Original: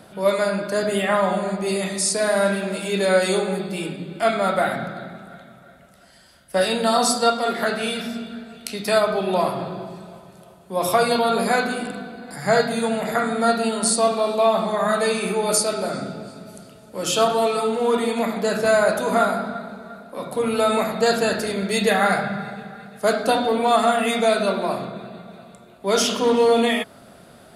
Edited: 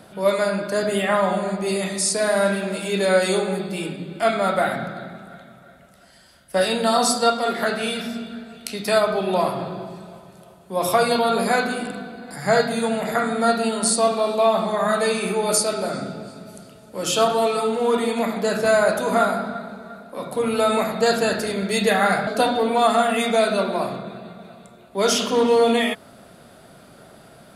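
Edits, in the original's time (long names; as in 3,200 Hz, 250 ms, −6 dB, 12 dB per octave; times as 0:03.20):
0:22.27–0:23.16: remove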